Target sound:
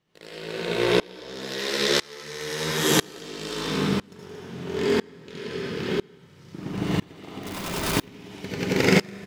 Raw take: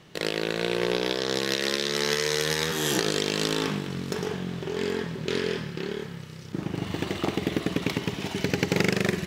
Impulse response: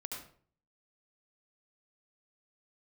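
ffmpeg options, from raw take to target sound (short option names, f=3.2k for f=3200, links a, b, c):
-filter_complex "[0:a]aecho=1:1:172|227.4:0.316|0.316,asettb=1/sr,asplit=3[a][b][c];[a]atrim=end=7.434[d];[b]atrim=start=7.43:end=7.94,asetpts=PTS-STARTPTS,afade=t=in:d=0.004:c=qsin,afade=t=out:st=0.506:d=0.004:c=qsin,aeval=exprs='(mod(15*val(0)+1,2)-1)/15':c=same[e];[c]atrim=start=7.936[f];[d][e]acrossfade=d=0.004:c1=hsin:c2=qsin[g];[g][f]acrossfade=d=0.004:c1=qsin:c2=hsin[h];[1:a]atrim=start_sample=2205[i];[h][i]afir=irnorm=-1:irlink=0,aeval=exprs='val(0)*pow(10,-28*if(lt(mod(-1*n/s,1),2*abs(-1)/1000),1-mod(-1*n/s,1)/(2*abs(-1)/1000),(mod(-1*n/s,1)-2*abs(-1)/1000)/(1-2*abs(-1)/1000))/20)':c=same,volume=9dB"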